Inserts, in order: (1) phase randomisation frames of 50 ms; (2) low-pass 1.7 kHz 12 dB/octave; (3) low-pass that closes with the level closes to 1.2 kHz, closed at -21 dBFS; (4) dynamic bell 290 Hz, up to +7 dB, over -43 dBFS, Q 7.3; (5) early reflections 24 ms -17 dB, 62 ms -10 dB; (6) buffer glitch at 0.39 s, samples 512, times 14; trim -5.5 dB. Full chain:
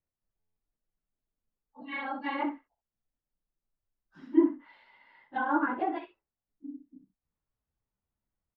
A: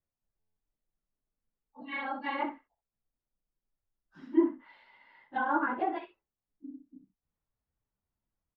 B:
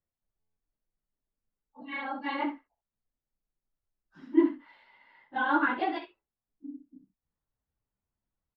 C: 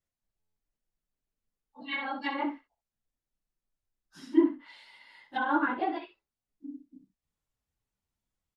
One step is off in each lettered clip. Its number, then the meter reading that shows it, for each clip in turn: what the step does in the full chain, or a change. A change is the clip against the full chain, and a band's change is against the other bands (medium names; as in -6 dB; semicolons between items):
4, 250 Hz band -3.0 dB; 3, 2 kHz band +4.0 dB; 2, 2 kHz band +2.0 dB